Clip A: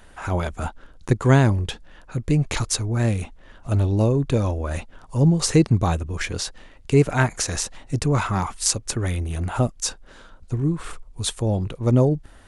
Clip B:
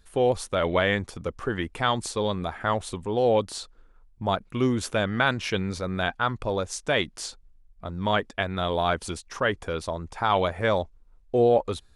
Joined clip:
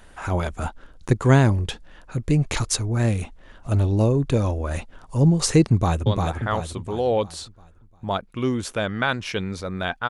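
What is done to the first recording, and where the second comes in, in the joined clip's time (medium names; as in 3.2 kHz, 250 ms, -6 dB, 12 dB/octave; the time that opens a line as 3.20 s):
clip A
5.71–6.06 s: echo throw 350 ms, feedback 45%, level -3 dB
6.06 s: go over to clip B from 2.24 s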